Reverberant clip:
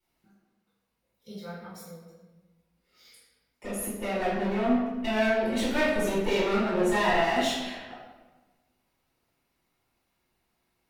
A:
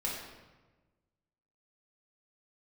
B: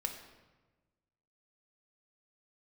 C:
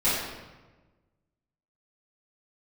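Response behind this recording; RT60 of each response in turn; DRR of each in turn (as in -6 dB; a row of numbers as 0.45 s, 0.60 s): C; 1.2 s, 1.2 s, 1.2 s; -4.5 dB, 4.5 dB, -13.5 dB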